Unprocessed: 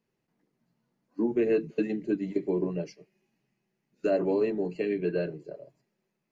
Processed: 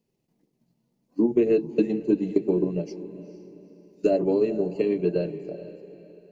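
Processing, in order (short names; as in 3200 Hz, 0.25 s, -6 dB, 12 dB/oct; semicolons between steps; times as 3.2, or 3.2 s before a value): bell 1500 Hz -13.5 dB 1.3 oct; transient shaper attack +4 dB, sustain -2 dB; on a send: diffused feedback echo 0.453 s, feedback 40%, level -14.5 dB; on the sum: gain +4.5 dB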